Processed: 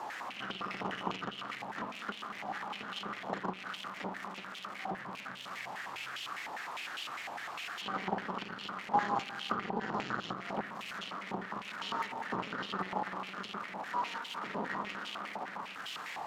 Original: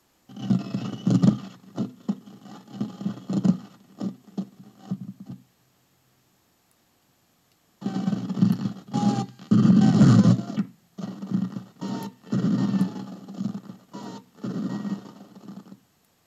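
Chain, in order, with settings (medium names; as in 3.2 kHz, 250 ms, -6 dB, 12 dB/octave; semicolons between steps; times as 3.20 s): jump at every zero crossing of -32 dBFS; compression 6:1, threshold -21 dBFS, peak gain reduction 10 dB; spring tank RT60 3.1 s, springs 53 ms, chirp 20 ms, DRR 6.5 dB; Chebyshev shaper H 4 -12 dB, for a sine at -12.5 dBFS; step-sequenced band-pass 9.9 Hz 860–3000 Hz; trim +8 dB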